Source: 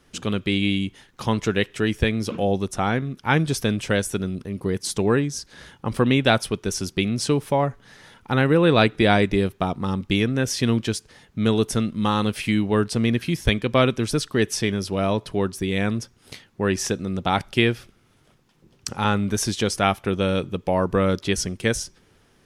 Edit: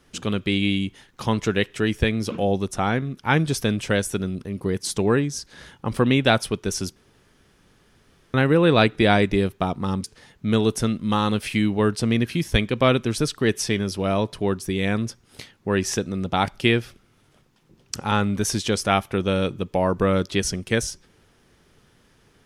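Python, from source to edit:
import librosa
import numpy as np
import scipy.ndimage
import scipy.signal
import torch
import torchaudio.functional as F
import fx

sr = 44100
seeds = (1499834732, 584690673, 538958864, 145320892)

y = fx.edit(x, sr, fx.room_tone_fill(start_s=6.96, length_s=1.38),
    fx.cut(start_s=10.04, length_s=0.93), tone=tone)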